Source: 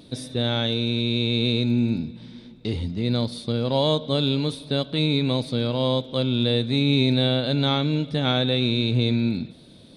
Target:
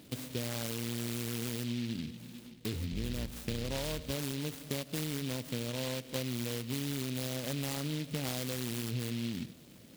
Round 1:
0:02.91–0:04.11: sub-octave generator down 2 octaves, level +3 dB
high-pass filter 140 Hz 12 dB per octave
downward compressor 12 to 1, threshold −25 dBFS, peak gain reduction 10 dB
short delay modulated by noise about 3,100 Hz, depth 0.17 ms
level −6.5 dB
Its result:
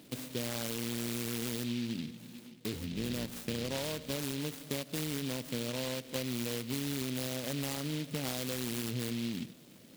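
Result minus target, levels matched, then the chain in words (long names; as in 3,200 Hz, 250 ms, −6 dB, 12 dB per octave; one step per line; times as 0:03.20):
125 Hz band −3.0 dB
0:02.91–0:04.11: sub-octave generator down 2 octaves, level +3 dB
high-pass filter 42 Hz 12 dB per octave
downward compressor 12 to 1, threshold −25 dBFS, peak gain reduction 11 dB
short delay modulated by noise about 3,100 Hz, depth 0.17 ms
level −6.5 dB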